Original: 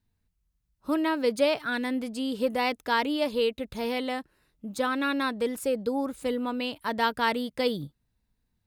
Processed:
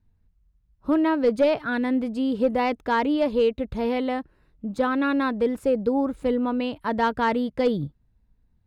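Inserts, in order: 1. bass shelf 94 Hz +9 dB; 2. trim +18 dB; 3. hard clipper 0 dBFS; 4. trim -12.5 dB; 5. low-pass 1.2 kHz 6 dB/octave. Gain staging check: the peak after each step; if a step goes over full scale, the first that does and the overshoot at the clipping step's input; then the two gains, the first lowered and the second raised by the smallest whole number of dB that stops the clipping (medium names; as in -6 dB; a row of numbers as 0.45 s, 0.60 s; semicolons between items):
-11.0 dBFS, +7.0 dBFS, 0.0 dBFS, -12.5 dBFS, -12.5 dBFS; step 2, 7.0 dB; step 2 +11 dB, step 4 -5.5 dB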